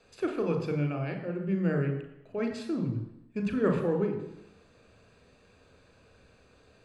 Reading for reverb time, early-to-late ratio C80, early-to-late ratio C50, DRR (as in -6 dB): 0.85 s, 10.0 dB, 8.0 dB, 5.0 dB